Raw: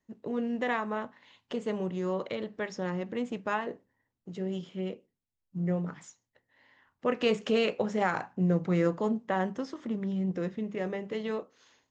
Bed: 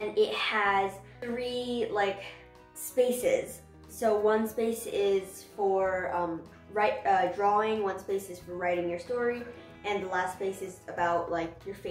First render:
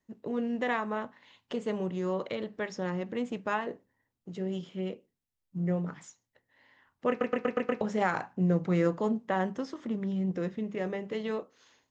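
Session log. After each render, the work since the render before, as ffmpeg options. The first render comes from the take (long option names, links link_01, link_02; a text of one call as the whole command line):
ffmpeg -i in.wav -filter_complex "[0:a]asplit=7[link_01][link_02][link_03][link_04][link_05][link_06][link_07];[link_01]atrim=end=7.212[link_08];[link_02]atrim=start=7.088:end=7.212[link_09];[link_03]atrim=start=7.088:end=7.212[link_10];[link_04]atrim=start=7.088:end=7.212[link_11];[link_05]atrim=start=7.088:end=7.212[link_12];[link_06]atrim=start=7.088:end=7.212[link_13];[link_07]atrim=start=7.808[link_14];[link_08][link_09]acrossfade=duration=0.004:curve1=hsin:curve2=hsin[link_15];[link_15][link_10]acrossfade=duration=0.004:curve1=hsin:curve2=hsin[link_16];[link_16][link_11]acrossfade=duration=0.004:curve1=hsin:curve2=hsin[link_17];[link_17][link_12]acrossfade=duration=0.004:curve1=hsin:curve2=hsin[link_18];[link_18][link_13]acrossfade=duration=0.004:curve1=hsin:curve2=hsin[link_19];[link_19][link_14]acrossfade=duration=0.004:curve1=hsin:curve2=hsin" out.wav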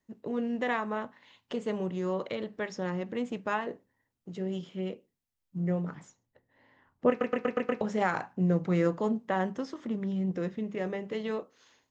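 ffmpeg -i in.wav -filter_complex "[0:a]asettb=1/sr,asplit=3[link_01][link_02][link_03];[link_01]atrim=end=5.954[link_04];[link_02]atrim=start=5.95:end=7.1,asetpts=PTS-STARTPTS,afade=type=in:duration=0.004:curve=qsin,afade=type=out:start_time=1.146:duration=0.004:curve=qsin,tiltshelf=frequency=1200:gain=7[link_05];[link_03]atrim=start=7.096[link_06];[link_04][link_05]acrossfade=duration=0.004:curve1=hsin:curve2=qsin[link_07];[link_07][link_06]acrossfade=duration=0.004:curve1=qsin:curve2=hsin" out.wav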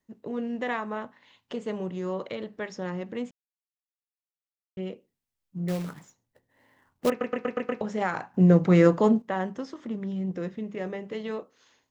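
ffmpeg -i in.wav -filter_complex "[0:a]asettb=1/sr,asplit=3[link_01][link_02][link_03];[link_01]atrim=end=5.684[link_04];[link_02]atrim=start=5.68:end=7.1,asetpts=PTS-STARTPTS,afade=type=in:duration=0.004:curve=qsin,afade=type=out:start_time=1.416:duration=0.004:curve=qsin,acrusher=bits=3:mode=log:mix=0:aa=0.000001[link_05];[link_03]atrim=start=7.096[link_06];[link_04][link_05]acrossfade=duration=0.004:curve1=hsin:curve2=qsin[link_07];[link_07][link_06]acrossfade=duration=0.004:curve1=qsin:curve2=hsin,asplit=5[link_08][link_09][link_10][link_11][link_12];[link_08]atrim=end=3.31,asetpts=PTS-STARTPTS,afade=type=out:start_time=3.306:duration=0.004:curve=hsin[link_13];[link_09]atrim=start=3.31:end=4.77,asetpts=PTS-STARTPTS,volume=0[link_14];[link_10]atrim=start=4.77:end=8.342,asetpts=PTS-STARTPTS,afade=type=in:duration=0.004:curve=hsin[link_15];[link_11]atrim=start=8.338:end=9.222,asetpts=PTS-STARTPTS,volume=8.5dB[link_16];[link_12]atrim=start=9.218[link_17];[link_13][link_14][link_15]concat=n=3:v=0:a=1[link_18];[link_18][link_16]acrossfade=duration=0.004:curve1=hsin:curve2=hsin[link_19];[link_19][link_17]acrossfade=duration=0.004:curve1=hsin:curve2=hsin" out.wav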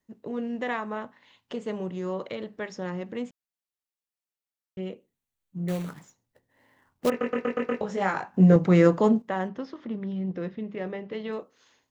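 ffmpeg -i in.wav -filter_complex "[0:a]asettb=1/sr,asplit=3[link_01][link_02][link_03];[link_01]atrim=end=4.874[link_04];[link_02]atrim=start=4.87:end=5.89,asetpts=PTS-STARTPTS,afade=type=in:duration=0.004:curve=qsin,afade=type=out:start_time=1.016:duration=0.004:curve=qsin,bandreject=frequency=5100:width=5.3[link_05];[link_03]atrim=start=5.886[link_06];[link_04][link_05]acrossfade=duration=0.004:curve1=hsin:curve2=qsin[link_07];[link_07][link_06]acrossfade=duration=0.004:curve1=qsin:curve2=hsin,asettb=1/sr,asplit=3[link_08][link_09][link_10];[link_08]atrim=end=7.114[link_11];[link_09]atrim=start=7.11:end=8.56,asetpts=PTS-STARTPTS,afade=type=in:duration=0.004:curve=qsin,afade=type=out:start_time=1.446:duration=0.004:curve=qsin,asplit=2[link_12][link_13];[link_13]adelay=21,volume=-3dB[link_14];[link_12][link_14]amix=inputs=2:normalize=0,atrim=end_sample=63945[link_15];[link_10]atrim=start=8.556[link_16];[link_11][link_15]acrossfade=duration=0.004:curve1=hsin:curve2=qsin[link_17];[link_17][link_16]acrossfade=duration=0.004:curve1=qsin:curve2=hsin,asettb=1/sr,asplit=3[link_18][link_19][link_20];[link_18]atrim=end=9.484[link_21];[link_19]atrim=start=9.48:end=11.33,asetpts=PTS-STARTPTS,afade=type=in:duration=0.004:curve=qsin,afade=type=out:start_time=1.846:duration=0.004:curve=qsin,lowpass=frequency=4800:width=0.5412,lowpass=frequency=4800:width=1.3066[link_22];[link_20]atrim=start=11.326[link_23];[link_21][link_22]acrossfade=duration=0.004:curve1=hsin:curve2=qsin[link_24];[link_24][link_23]acrossfade=duration=0.004:curve1=qsin:curve2=hsin" out.wav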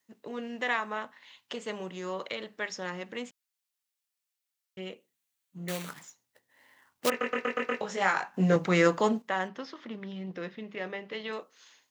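ffmpeg -i in.wav -af "highpass=frequency=160:poles=1,tiltshelf=frequency=920:gain=-7" out.wav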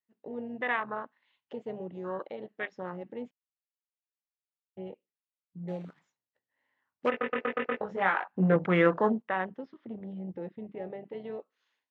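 ffmpeg -i in.wav -af "afwtdn=0.0178,lowpass=3000" out.wav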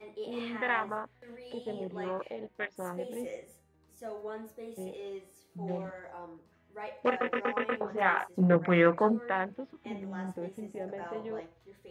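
ffmpeg -i in.wav -i bed.wav -filter_complex "[1:a]volume=-15dB[link_01];[0:a][link_01]amix=inputs=2:normalize=0" out.wav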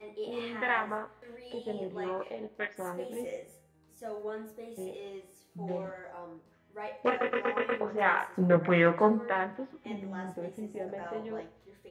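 ffmpeg -i in.wav -filter_complex "[0:a]asplit=2[link_01][link_02];[link_02]adelay=19,volume=-7.5dB[link_03];[link_01][link_03]amix=inputs=2:normalize=0,aecho=1:1:77|154|231|308:0.1|0.055|0.0303|0.0166" out.wav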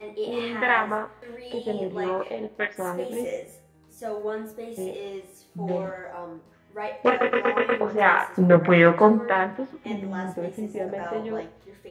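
ffmpeg -i in.wav -af "volume=8dB" out.wav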